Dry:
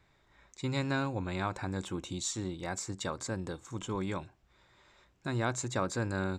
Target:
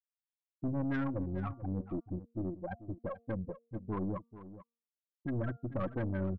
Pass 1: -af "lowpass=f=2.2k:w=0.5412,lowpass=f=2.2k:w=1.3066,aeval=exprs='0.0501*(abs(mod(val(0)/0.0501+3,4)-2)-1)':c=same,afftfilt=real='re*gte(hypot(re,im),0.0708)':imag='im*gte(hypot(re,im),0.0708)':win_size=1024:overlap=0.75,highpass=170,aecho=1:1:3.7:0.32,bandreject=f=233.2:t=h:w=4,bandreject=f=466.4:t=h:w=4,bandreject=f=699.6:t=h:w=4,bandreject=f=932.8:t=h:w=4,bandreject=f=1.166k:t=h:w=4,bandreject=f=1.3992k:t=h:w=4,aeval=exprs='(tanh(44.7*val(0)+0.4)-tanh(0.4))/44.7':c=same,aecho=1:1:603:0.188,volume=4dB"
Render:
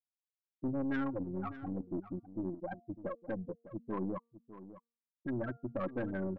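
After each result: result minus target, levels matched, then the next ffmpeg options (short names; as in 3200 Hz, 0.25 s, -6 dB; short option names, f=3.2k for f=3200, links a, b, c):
echo 0.164 s late; 125 Hz band -5.5 dB
-af "lowpass=f=2.2k:w=0.5412,lowpass=f=2.2k:w=1.3066,aeval=exprs='0.0501*(abs(mod(val(0)/0.0501+3,4)-2)-1)':c=same,afftfilt=real='re*gte(hypot(re,im),0.0708)':imag='im*gte(hypot(re,im),0.0708)':win_size=1024:overlap=0.75,highpass=170,aecho=1:1:3.7:0.32,bandreject=f=233.2:t=h:w=4,bandreject=f=466.4:t=h:w=4,bandreject=f=699.6:t=h:w=4,bandreject=f=932.8:t=h:w=4,bandreject=f=1.166k:t=h:w=4,bandreject=f=1.3992k:t=h:w=4,aeval=exprs='(tanh(44.7*val(0)+0.4)-tanh(0.4))/44.7':c=same,aecho=1:1:439:0.188,volume=4dB"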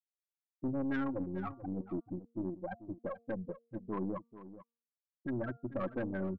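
125 Hz band -5.5 dB
-af "lowpass=f=2.2k:w=0.5412,lowpass=f=2.2k:w=1.3066,aeval=exprs='0.0501*(abs(mod(val(0)/0.0501+3,4)-2)-1)':c=same,afftfilt=real='re*gte(hypot(re,im),0.0708)':imag='im*gte(hypot(re,im),0.0708)':win_size=1024:overlap=0.75,aecho=1:1:3.7:0.32,bandreject=f=233.2:t=h:w=4,bandreject=f=466.4:t=h:w=4,bandreject=f=699.6:t=h:w=4,bandreject=f=932.8:t=h:w=4,bandreject=f=1.166k:t=h:w=4,bandreject=f=1.3992k:t=h:w=4,aeval=exprs='(tanh(44.7*val(0)+0.4)-tanh(0.4))/44.7':c=same,aecho=1:1:439:0.188,volume=4dB"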